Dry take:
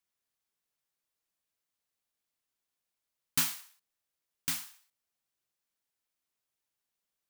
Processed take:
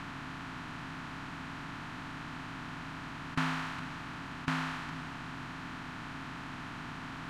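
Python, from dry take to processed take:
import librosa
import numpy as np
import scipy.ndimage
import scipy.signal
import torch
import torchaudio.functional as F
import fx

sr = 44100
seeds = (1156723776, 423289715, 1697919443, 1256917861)

y = fx.bin_compress(x, sr, power=0.2)
y = scipy.signal.sosfilt(scipy.signal.butter(2, 1400.0, 'lowpass', fs=sr, output='sos'), y)
y = y + 10.0 ** (-14.5 / 20.0) * np.pad(y, (int(409 * sr / 1000.0), 0))[:len(y)]
y = F.gain(torch.from_numpy(y), 5.5).numpy()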